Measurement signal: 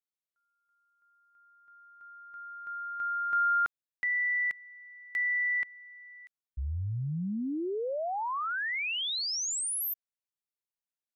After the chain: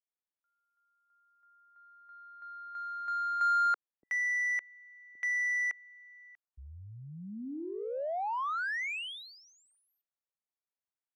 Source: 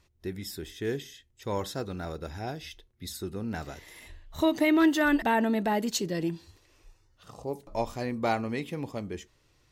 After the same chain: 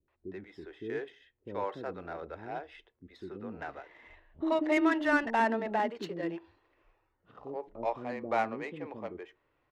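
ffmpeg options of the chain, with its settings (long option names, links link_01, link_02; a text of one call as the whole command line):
ffmpeg -i in.wav -filter_complex "[0:a]acrossover=split=280 3000:gain=0.178 1 0.141[link_01][link_02][link_03];[link_01][link_02][link_03]amix=inputs=3:normalize=0,adynamicsmooth=sensitivity=5.5:basefreq=2600,acrossover=split=390[link_04][link_05];[link_05]adelay=80[link_06];[link_04][link_06]amix=inputs=2:normalize=0" out.wav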